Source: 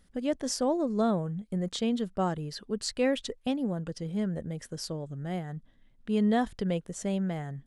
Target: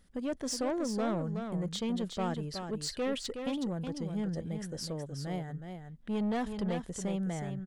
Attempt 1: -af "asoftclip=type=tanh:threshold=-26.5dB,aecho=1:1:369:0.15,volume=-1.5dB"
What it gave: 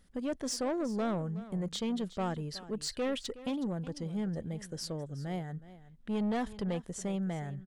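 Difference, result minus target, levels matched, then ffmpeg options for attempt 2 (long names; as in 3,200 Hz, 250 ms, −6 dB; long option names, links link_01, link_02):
echo-to-direct −9.5 dB
-af "asoftclip=type=tanh:threshold=-26.5dB,aecho=1:1:369:0.447,volume=-1.5dB"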